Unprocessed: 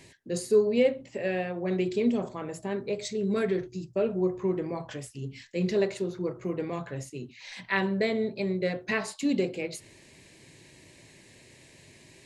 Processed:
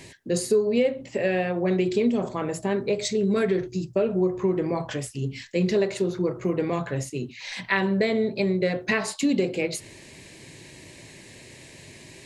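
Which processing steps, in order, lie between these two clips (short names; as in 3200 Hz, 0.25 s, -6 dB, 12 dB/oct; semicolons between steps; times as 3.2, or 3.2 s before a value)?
compressor 3:1, threshold -28 dBFS, peak gain reduction 9 dB; gain +8 dB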